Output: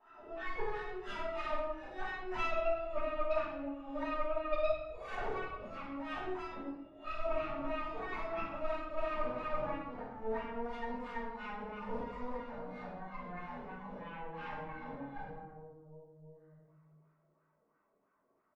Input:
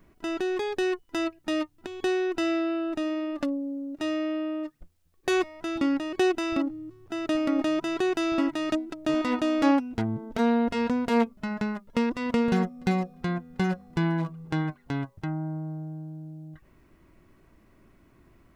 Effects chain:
peak hold with a rise ahead of every peak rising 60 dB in 1.14 s
noise reduction from a noise print of the clip's start 21 dB
0:10.54–0:12.33: bass and treble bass −2 dB, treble +6 dB
comb filter 4.6 ms, depth 33%
dynamic equaliser 520 Hz, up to −5 dB, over −40 dBFS, Q 2.5
downward compressor 8 to 1, threshold −39 dBFS, peak gain reduction 21.5 dB
soft clipping −37.5 dBFS, distortion −16 dB
LFO wah 3 Hz 470–1,400 Hz, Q 7
harmonic generator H 6 −11 dB, 8 −25 dB, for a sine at −40.5 dBFS
rectangular room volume 370 cubic metres, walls mixed, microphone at 5.8 metres
level +3.5 dB

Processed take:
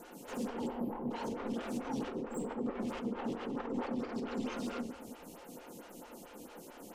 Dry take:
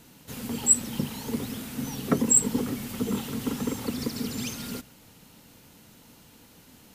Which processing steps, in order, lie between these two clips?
time-frequency box erased 0:00.67–0:01.11, 1,100–11,000 Hz
treble cut that deepens with the level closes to 2,000 Hz, closed at −26 dBFS
octave-band graphic EQ 125/1,000/2,000/4,000 Hz −12/−5/−8/−10 dB
compressor whose output falls as the input rises −37 dBFS, ratio −1
mid-hump overdrive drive 18 dB, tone 2,200 Hz, clips at −25 dBFS
soft clipping −32.5 dBFS, distortion −16 dB
rectangular room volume 830 cubic metres, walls mixed, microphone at 0.89 metres
phaser with staggered stages 4.5 Hz
level +1 dB

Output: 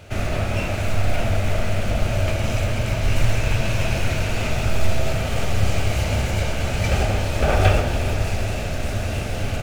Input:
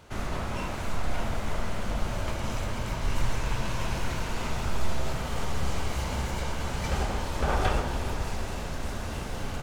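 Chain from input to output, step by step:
thirty-one-band graphic EQ 100 Hz +12 dB, 630 Hz +7 dB, 1,000 Hz −11 dB, 2,500 Hz +7 dB
in parallel at −10.5 dB: floating-point word with a short mantissa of 2 bits
on the sum: level +4.5 dB

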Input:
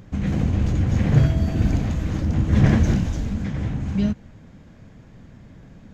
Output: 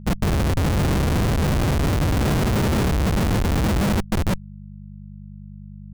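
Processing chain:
granular cloud, grains 20 per second, spray 485 ms
comparator with hysteresis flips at −30 dBFS
hum with harmonics 50 Hz, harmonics 4, −42 dBFS −1 dB per octave
level +3.5 dB

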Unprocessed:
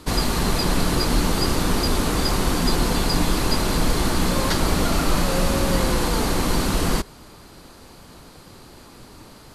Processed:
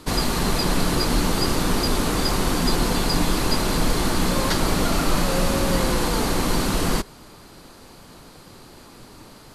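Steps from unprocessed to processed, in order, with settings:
parametric band 61 Hz −5 dB 0.92 octaves

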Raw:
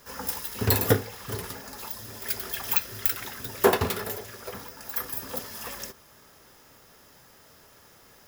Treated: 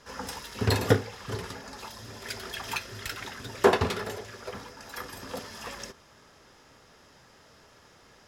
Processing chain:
low-pass filter 6,400 Hz 12 dB per octave

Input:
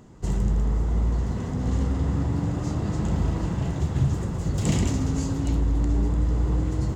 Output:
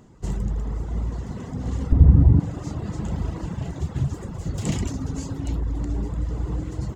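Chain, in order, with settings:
reverb reduction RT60 0.86 s
0:01.92–0:02.40: spectral tilt −4.5 dB per octave
level −1 dB

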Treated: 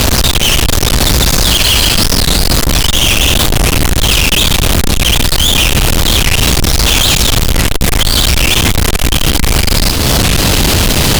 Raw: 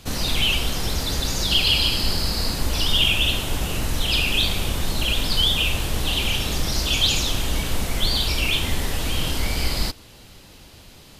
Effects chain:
low-shelf EQ 230 Hz +4.5 dB
downward compressor 8 to 1, threshold −30 dBFS, peak gain reduction 19 dB
fuzz pedal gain 60 dB, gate −60 dBFS
wow of a warped record 45 rpm, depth 250 cents
level +5.5 dB

